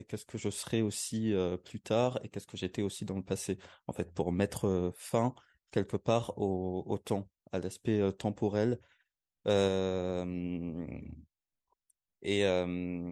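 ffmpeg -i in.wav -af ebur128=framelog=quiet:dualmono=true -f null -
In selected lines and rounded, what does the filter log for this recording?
Integrated loudness:
  I:         -31.0 LUFS
  Threshold: -41.2 LUFS
Loudness range:
  LRA:         2.5 LU
  Threshold: -51.4 LUFS
  LRA low:   -32.7 LUFS
  LRA high:  -30.2 LUFS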